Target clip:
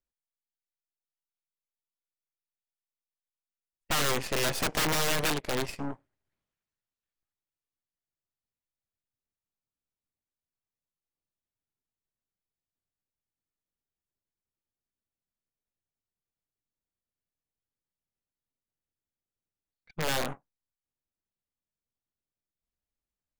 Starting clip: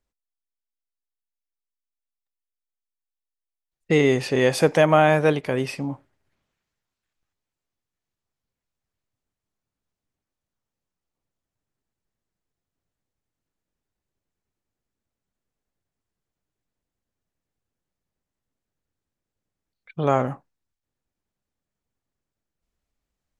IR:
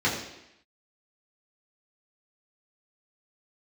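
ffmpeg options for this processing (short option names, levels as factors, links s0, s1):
-af "aeval=exprs='(mod(5.62*val(0)+1,2)-1)/5.62':c=same,aeval=exprs='0.188*(cos(1*acos(clip(val(0)/0.188,-1,1)))-cos(1*PI/2))+0.0119*(cos(7*acos(clip(val(0)/0.188,-1,1)))-cos(7*PI/2))+0.0376*(cos(8*acos(clip(val(0)/0.188,-1,1)))-cos(8*PI/2))':c=same,volume=0.422"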